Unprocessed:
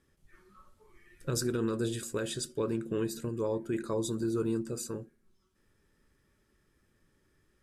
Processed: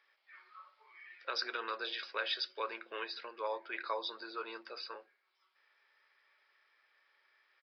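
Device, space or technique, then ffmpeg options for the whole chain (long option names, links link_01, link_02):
musical greeting card: -af "aresample=11025,aresample=44100,highpass=frequency=710:width=0.5412,highpass=frequency=710:width=1.3066,equalizer=frequency=2200:width_type=o:width=0.3:gain=8,volume=5dB"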